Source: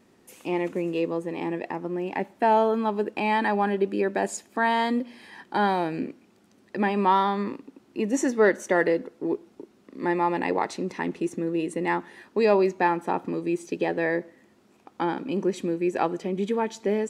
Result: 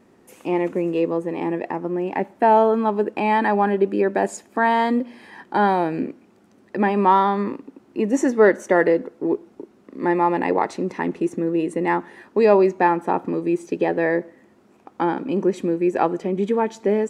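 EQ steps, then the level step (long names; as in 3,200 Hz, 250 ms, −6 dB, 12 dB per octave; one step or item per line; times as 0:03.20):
bass and treble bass −2 dB, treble +4 dB
parametric band 4,000 Hz −6 dB 1.7 octaves
high-shelf EQ 5,600 Hz −12 dB
+6.0 dB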